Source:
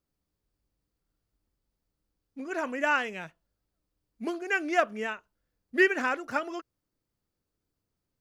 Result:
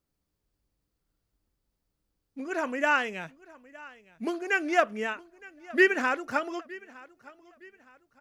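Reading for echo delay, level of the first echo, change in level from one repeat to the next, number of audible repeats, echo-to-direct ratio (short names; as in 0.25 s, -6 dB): 0.914 s, -21.5 dB, -9.0 dB, 2, -21.0 dB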